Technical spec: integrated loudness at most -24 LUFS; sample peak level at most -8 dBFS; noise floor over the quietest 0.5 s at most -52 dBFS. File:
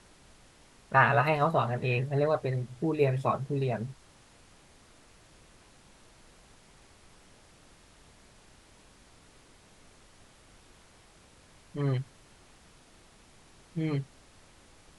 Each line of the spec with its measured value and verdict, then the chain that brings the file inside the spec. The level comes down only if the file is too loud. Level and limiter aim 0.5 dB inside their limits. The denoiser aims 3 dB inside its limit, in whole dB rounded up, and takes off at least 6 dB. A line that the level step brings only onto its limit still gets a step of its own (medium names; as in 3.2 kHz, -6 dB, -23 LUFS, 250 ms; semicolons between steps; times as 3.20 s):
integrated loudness -29.0 LUFS: pass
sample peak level -10.0 dBFS: pass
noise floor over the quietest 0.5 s -58 dBFS: pass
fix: none needed